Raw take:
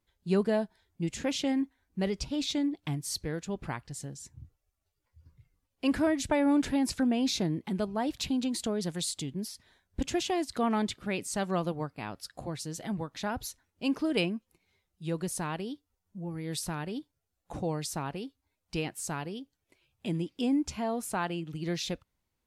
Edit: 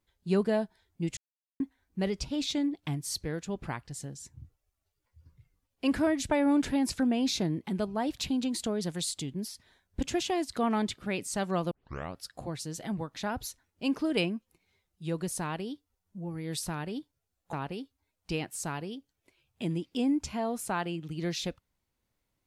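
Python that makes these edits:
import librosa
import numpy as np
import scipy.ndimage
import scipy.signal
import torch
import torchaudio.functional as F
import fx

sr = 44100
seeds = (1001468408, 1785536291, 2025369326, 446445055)

y = fx.edit(x, sr, fx.silence(start_s=1.17, length_s=0.43),
    fx.tape_start(start_s=11.71, length_s=0.45),
    fx.cut(start_s=17.53, length_s=0.44), tone=tone)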